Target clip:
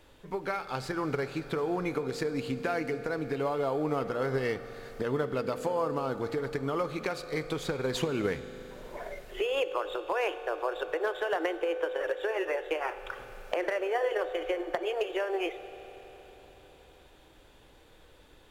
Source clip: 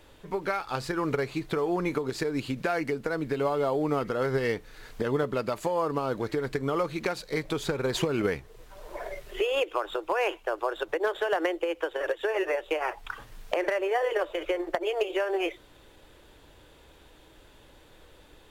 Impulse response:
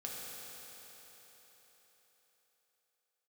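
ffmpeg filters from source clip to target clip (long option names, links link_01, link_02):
-filter_complex "[0:a]asplit=2[link_01][link_02];[1:a]atrim=start_sample=2205,highshelf=frequency=10000:gain=-10[link_03];[link_02][link_03]afir=irnorm=-1:irlink=0,volume=-7.5dB[link_04];[link_01][link_04]amix=inputs=2:normalize=0,volume=-5dB"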